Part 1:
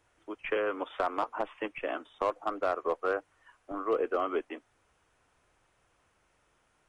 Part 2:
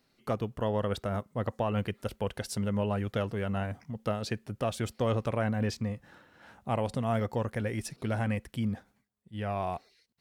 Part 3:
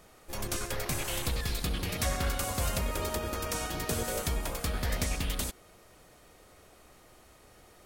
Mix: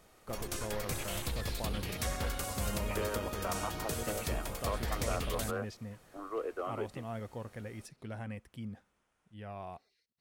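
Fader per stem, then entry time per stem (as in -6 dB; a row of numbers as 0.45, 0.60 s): -8.0, -11.5, -5.0 dB; 2.45, 0.00, 0.00 s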